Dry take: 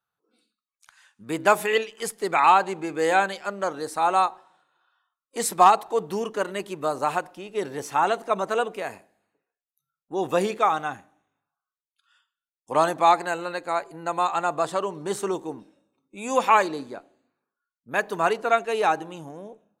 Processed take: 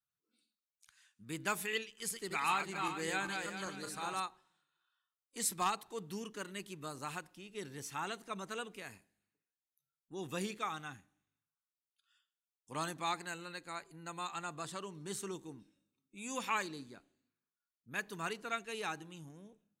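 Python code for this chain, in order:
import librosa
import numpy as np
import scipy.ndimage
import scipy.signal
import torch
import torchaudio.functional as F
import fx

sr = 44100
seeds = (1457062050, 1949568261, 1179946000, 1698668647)

y = fx.reverse_delay_fb(x, sr, ms=196, feedback_pct=50, wet_db=-4.0, at=(1.9, 4.2))
y = fx.tone_stack(y, sr, knobs='6-0-2')
y = y * 10.0 ** (7.5 / 20.0)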